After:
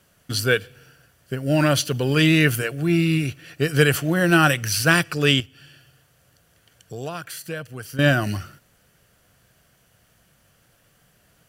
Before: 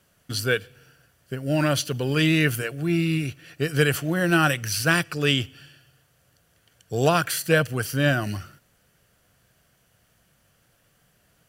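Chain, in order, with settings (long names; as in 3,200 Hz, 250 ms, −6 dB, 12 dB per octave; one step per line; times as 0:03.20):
0:05.40–0:07.99: downward compressor 2 to 1, threshold −45 dBFS, peak gain reduction 16.5 dB
level +3.5 dB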